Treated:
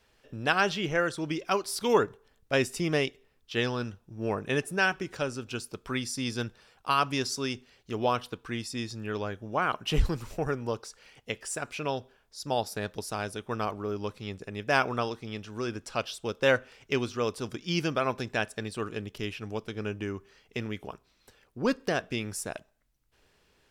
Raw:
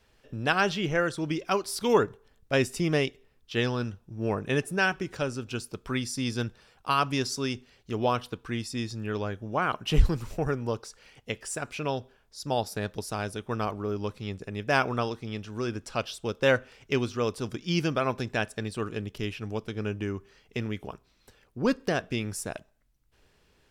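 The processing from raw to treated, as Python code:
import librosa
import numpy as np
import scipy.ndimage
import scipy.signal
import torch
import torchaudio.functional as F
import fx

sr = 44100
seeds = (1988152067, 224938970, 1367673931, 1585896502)

y = fx.low_shelf(x, sr, hz=250.0, db=-5.0)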